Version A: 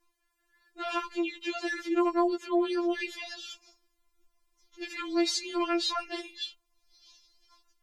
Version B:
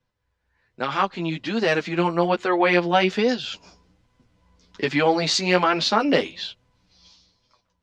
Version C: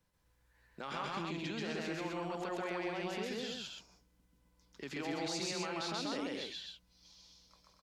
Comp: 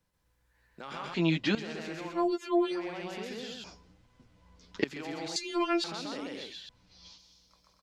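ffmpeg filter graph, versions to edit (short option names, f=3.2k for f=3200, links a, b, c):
-filter_complex "[1:a]asplit=3[a][b][c];[0:a]asplit=2[d][e];[2:a]asplit=6[f][g][h][i][j][k];[f]atrim=end=1.142[l];[a]atrim=start=1.138:end=1.552[m];[g]atrim=start=1.548:end=2.3[n];[d]atrim=start=2.06:end=2.89[o];[h]atrim=start=2.65:end=3.642[p];[b]atrim=start=3.638:end=4.842[q];[i]atrim=start=4.838:end=5.362[r];[e]atrim=start=5.358:end=5.842[s];[j]atrim=start=5.838:end=6.692[t];[c]atrim=start=6.688:end=7.182[u];[k]atrim=start=7.178[v];[l][m]acrossfade=d=0.004:c1=hsin:c2=hsin[w];[w][n]acrossfade=d=0.004:c1=hsin:c2=hsin[x];[x][o]acrossfade=d=0.24:c1=tri:c2=tri[y];[y][p]acrossfade=d=0.24:c1=tri:c2=tri[z];[z][q]acrossfade=d=0.004:c1=hsin:c2=hsin[aa];[aa][r]acrossfade=d=0.004:c1=hsin:c2=hsin[ab];[ab][s]acrossfade=d=0.004:c1=hsin:c2=hsin[ac];[ac][t]acrossfade=d=0.004:c1=hsin:c2=hsin[ad];[ad][u]acrossfade=d=0.004:c1=hsin:c2=hsin[ae];[ae][v]acrossfade=d=0.004:c1=hsin:c2=hsin"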